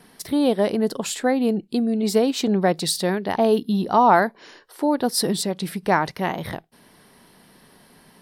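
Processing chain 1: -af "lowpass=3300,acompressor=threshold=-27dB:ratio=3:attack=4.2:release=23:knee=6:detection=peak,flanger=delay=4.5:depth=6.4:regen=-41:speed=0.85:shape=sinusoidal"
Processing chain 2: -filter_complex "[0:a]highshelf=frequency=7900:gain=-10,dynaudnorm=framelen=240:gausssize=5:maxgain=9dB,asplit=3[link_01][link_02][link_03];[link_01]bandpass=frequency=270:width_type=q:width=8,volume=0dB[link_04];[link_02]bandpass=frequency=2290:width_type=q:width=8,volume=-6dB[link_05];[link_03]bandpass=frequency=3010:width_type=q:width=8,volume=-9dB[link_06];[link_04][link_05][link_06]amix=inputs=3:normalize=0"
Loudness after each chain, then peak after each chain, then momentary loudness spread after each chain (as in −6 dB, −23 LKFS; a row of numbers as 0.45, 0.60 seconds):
−32.5, −27.5 LKFS; −16.5, −11.5 dBFS; 7, 15 LU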